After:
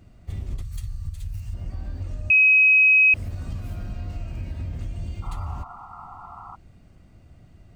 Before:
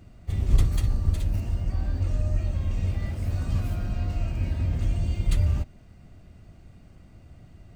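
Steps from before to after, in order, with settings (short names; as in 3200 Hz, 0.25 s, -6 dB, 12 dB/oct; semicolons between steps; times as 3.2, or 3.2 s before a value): 0.62–1.54 EQ curve 130 Hz 0 dB, 320 Hz -24 dB, 1200 Hz -6 dB, 8200 Hz +4 dB; compressor 12:1, threshold -25 dBFS, peak gain reduction 13.5 dB; 2.3–3.14 bleep 2540 Hz -10.5 dBFS; 5.22–6.56 painted sound noise 690–1400 Hz -40 dBFS; gain -1.5 dB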